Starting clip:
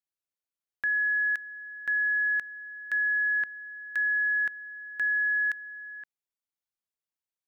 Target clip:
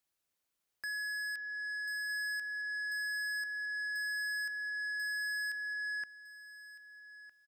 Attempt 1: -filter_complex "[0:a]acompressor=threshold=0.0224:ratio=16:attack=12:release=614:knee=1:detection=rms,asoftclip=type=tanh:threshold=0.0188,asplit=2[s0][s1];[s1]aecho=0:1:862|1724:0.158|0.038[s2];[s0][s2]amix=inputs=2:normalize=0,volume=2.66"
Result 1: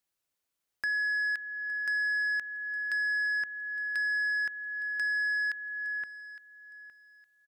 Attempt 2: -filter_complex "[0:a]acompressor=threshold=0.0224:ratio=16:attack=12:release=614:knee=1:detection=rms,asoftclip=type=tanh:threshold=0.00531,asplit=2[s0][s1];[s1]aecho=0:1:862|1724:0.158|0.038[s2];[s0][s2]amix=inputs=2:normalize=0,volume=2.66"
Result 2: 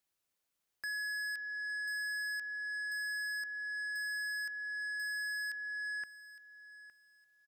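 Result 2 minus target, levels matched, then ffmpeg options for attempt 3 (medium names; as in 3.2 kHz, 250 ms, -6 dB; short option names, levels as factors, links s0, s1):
echo 396 ms early
-filter_complex "[0:a]acompressor=threshold=0.0224:ratio=16:attack=12:release=614:knee=1:detection=rms,asoftclip=type=tanh:threshold=0.00531,asplit=2[s0][s1];[s1]aecho=0:1:1258|2516:0.158|0.038[s2];[s0][s2]amix=inputs=2:normalize=0,volume=2.66"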